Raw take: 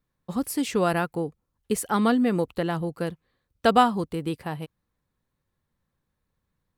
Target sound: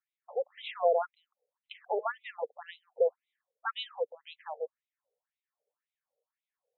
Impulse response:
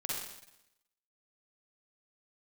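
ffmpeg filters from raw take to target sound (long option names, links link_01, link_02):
-af "lowshelf=frequency=680:width_type=q:width=1.5:gain=10,afftfilt=real='re*between(b*sr/1024,570*pow(2900/570,0.5+0.5*sin(2*PI*1.9*pts/sr))/1.41,570*pow(2900/570,0.5+0.5*sin(2*PI*1.9*pts/sr))*1.41)':imag='im*between(b*sr/1024,570*pow(2900/570,0.5+0.5*sin(2*PI*1.9*pts/sr))/1.41,570*pow(2900/570,0.5+0.5*sin(2*PI*1.9*pts/sr))*1.41)':win_size=1024:overlap=0.75,volume=-4dB"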